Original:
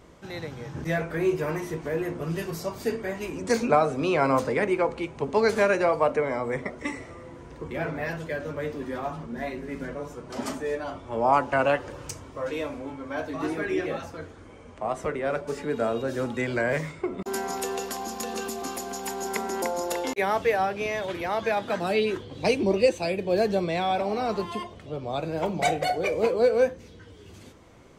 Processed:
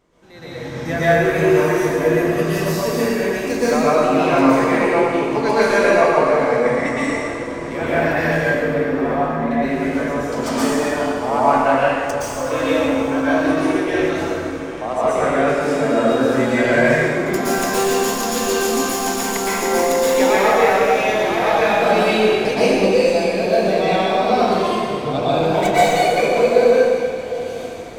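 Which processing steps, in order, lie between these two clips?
stylus tracing distortion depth 0.035 ms
0:13.39–0:13.97: noise gate with hold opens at −18 dBFS
parametric band 76 Hz −7 dB 1.3 octaves
automatic gain control gain up to 15.5 dB
0:08.43–0:09.51: high-frequency loss of the air 450 metres
on a send: feedback delay with all-pass diffusion 812 ms, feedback 46%, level −15 dB
on the sum: dense smooth reverb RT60 1.8 s, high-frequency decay 0.95×, pre-delay 105 ms, DRR −9.5 dB
level −10.5 dB

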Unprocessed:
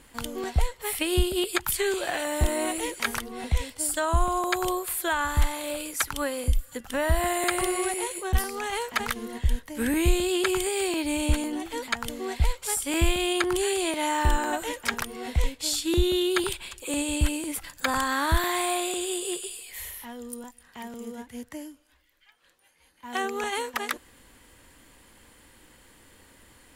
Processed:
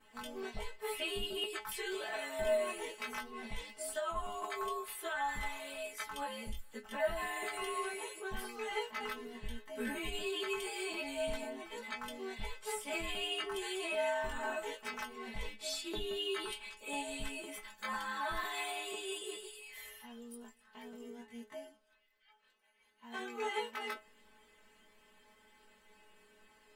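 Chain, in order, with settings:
every overlapping window played backwards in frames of 42 ms
bass and treble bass −8 dB, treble −11 dB
brickwall limiter −24 dBFS, peak gain reduction 9 dB
stiff-string resonator 210 Hz, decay 0.22 s, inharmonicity 0.002
level +9 dB

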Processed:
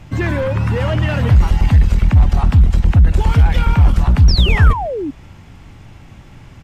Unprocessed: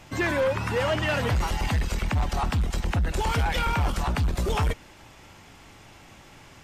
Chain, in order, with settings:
bass and treble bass +13 dB, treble −5 dB
single-tap delay 146 ms −20.5 dB
sound drawn into the spectrogram fall, 0:04.28–0:05.11, 260–5,800 Hz −24 dBFS
level +2.5 dB

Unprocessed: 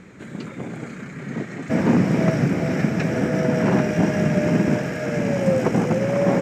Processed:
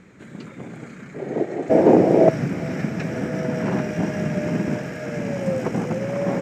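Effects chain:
0:01.14–0:02.29: flat-topped bell 510 Hz +15.5 dB
level −4.5 dB

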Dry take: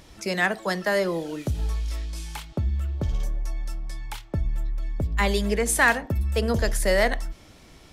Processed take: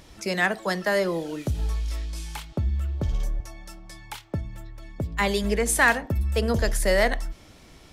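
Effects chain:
0:03.40–0:05.44: high-pass filter 83 Hz 12 dB per octave

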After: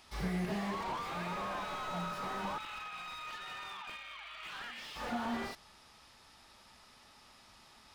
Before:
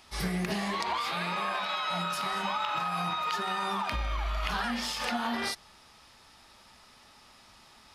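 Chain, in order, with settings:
0:02.58–0:04.96: resonant band-pass 2,700 Hz, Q 1.7
slew-rate limiting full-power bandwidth 25 Hz
level −3.5 dB

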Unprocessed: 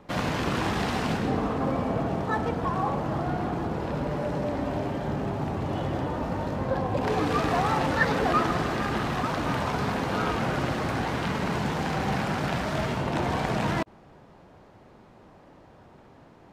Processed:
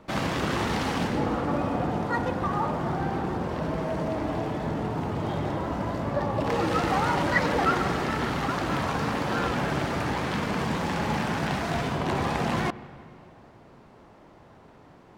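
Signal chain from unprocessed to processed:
wrong playback speed 44.1 kHz file played as 48 kHz
on a send: convolution reverb RT60 2.5 s, pre-delay 83 ms, DRR 17.5 dB

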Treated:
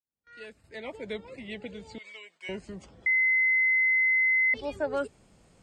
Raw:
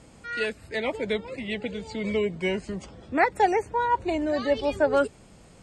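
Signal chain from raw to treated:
fade in at the beginning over 1.19 s
0:01.98–0:02.49: high-pass filter 1,500 Hz 12 dB per octave
noise gate with hold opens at −43 dBFS
0:03.06–0:04.54: beep over 2,050 Hz −12.5 dBFS
level −8 dB

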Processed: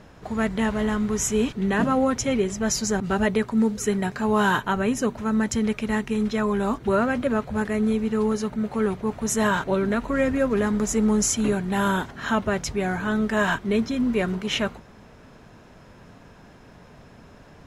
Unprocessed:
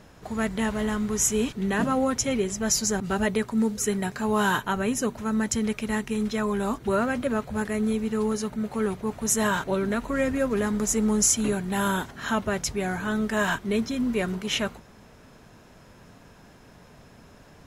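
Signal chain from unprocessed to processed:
low-pass filter 3,900 Hz 6 dB per octave
level +3 dB

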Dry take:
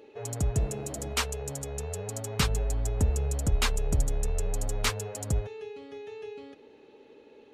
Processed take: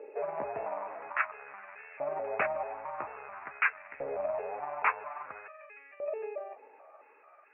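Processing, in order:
pitch shifter gated in a rhythm +6 semitones, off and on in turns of 219 ms
auto-filter high-pass saw up 0.5 Hz 490–2,000 Hz
Chebyshev low-pass filter 2,600 Hz, order 8
level +2 dB

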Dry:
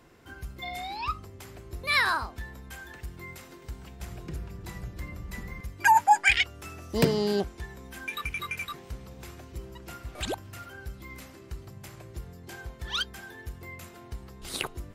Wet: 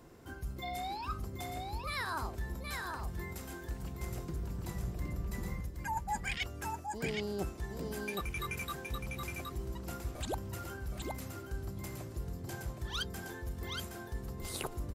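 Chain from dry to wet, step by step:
parametric band 2,400 Hz −8 dB 2.1 octaves
reversed playback
downward compressor 12 to 1, threshold −36 dBFS, peak gain reduction 20 dB
reversed playback
single-tap delay 769 ms −4 dB
level +2 dB

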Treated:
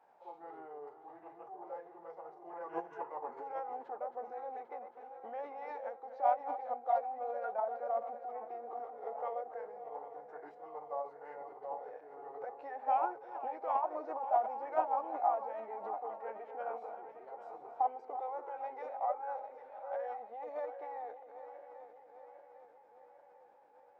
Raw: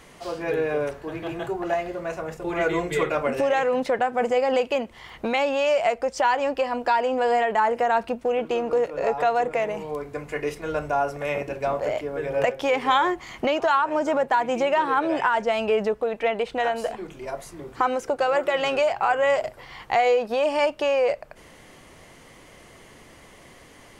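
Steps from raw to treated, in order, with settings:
feedback delay that plays each chunk backwards 400 ms, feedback 74%, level −10.5 dB
resonant band-pass 1,000 Hz, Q 8.7
formants moved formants −4 semitones
level −4 dB

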